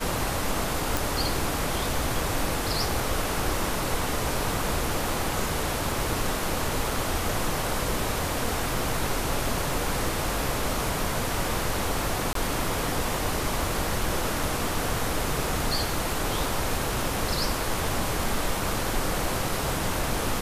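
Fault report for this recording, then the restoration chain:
0:00.97: click
0:12.33–0:12.35: drop-out 23 ms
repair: click removal
repair the gap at 0:12.33, 23 ms

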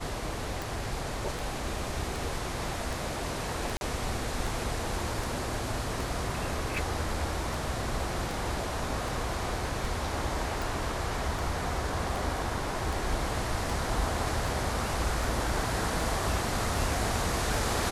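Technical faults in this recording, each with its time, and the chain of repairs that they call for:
scratch tick 78 rpm
0:03.77–0:03.81: drop-out 41 ms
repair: click removal
repair the gap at 0:03.77, 41 ms

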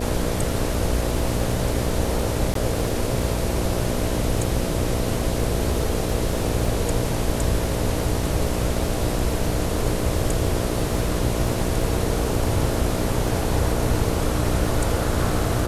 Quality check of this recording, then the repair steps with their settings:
mains buzz 60 Hz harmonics 11 −27 dBFS
surface crackle 32 per second −29 dBFS
0:02.54–0:02.55: drop-out 13 ms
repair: click removal
hum removal 60 Hz, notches 11
repair the gap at 0:02.54, 13 ms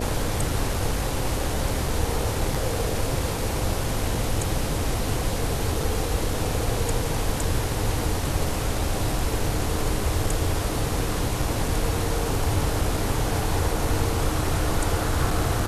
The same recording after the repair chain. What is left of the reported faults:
none of them is left

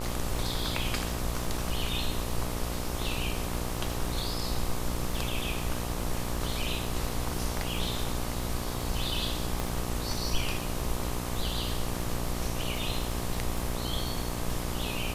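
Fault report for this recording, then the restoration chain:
mains buzz 60 Hz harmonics 21 −35 dBFS
surface crackle 34 per second −35 dBFS
0:09.60: click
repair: click removal
hum removal 60 Hz, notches 21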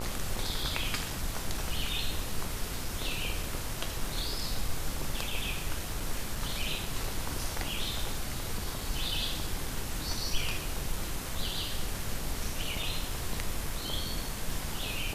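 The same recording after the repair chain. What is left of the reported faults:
0:09.60: click

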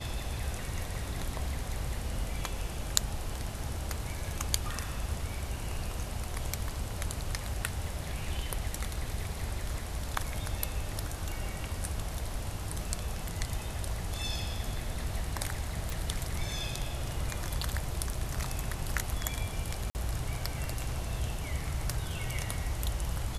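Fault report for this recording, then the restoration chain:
0:15.90: click
0:19.90–0:19.95: drop-out 49 ms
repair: click removal
repair the gap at 0:19.90, 49 ms

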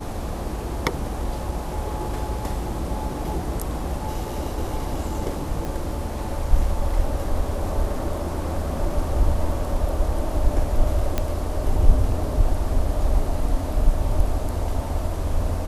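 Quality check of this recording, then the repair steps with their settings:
0:05.65: click
0:11.18: click −8 dBFS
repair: click removal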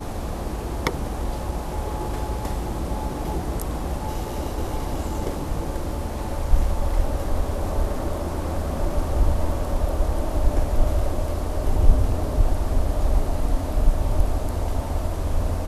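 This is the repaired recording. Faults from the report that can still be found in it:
0:11.18: click

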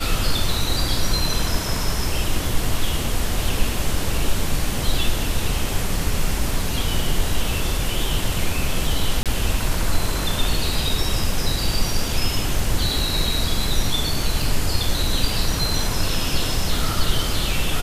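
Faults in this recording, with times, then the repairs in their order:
0:09.23–0:09.26: drop-out 27 ms
0:14.42: drop-out 2.7 ms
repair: repair the gap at 0:09.23, 27 ms
repair the gap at 0:14.42, 2.7 ms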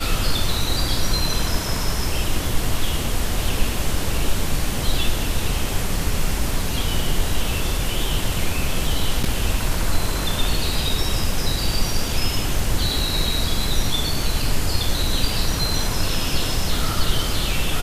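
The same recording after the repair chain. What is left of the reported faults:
none of them is left

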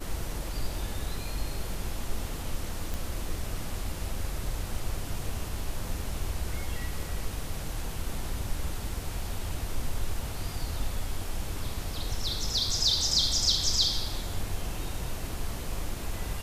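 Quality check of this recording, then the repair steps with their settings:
0:02.94: click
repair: click removal

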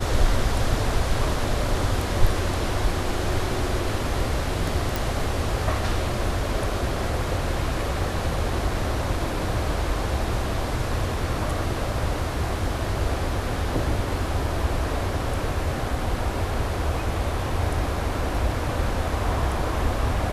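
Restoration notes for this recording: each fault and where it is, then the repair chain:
0:04.96: click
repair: click removal

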